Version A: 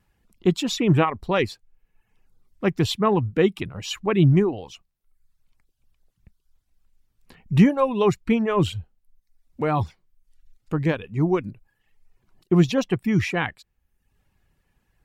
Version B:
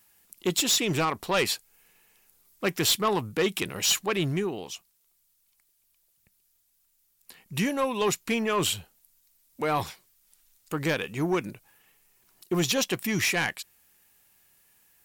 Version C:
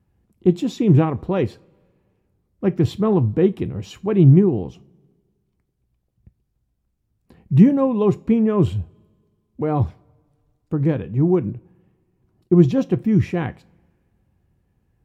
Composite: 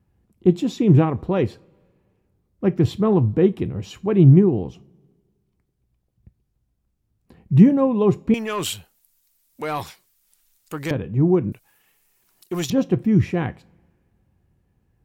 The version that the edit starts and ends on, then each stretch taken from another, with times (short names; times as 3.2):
C
8.34–10.91 from B
11.52–12.7 from B
not used: A